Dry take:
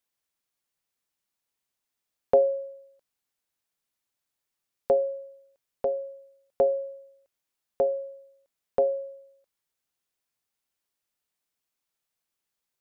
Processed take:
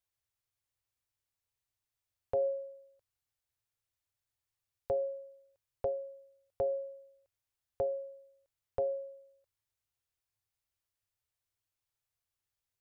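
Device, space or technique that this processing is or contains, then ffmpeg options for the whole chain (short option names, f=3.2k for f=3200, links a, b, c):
car stereo with a boomy subwoofer: -af "lowshelf=f=140:t=q:w=3:g=9.5,alimiter=limit=-17.5dB:level=0:latency=1:release=132,volume=-6dB"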